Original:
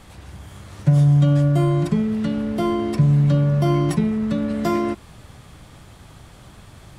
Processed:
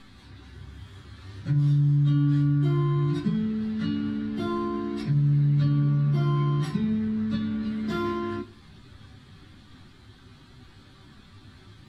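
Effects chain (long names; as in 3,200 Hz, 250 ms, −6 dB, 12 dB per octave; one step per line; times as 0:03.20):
high-shelf EQ 5,200 Hz −9.5 dB
time stretch by phase vocoder 1.7×
downward compressor, threshold −17 dBFS, peak gain reduction 5.5 dB
graphic EQ with 15 bands 250 Hz +9 dB, 630 Hz −8 dB, 1,600 Hz +6 dB, 4,000 Hz +12 dB
convolution reverb RT60 0.30 s, pre-delay 5 ms, DRR 4 dB
level −7.5 dB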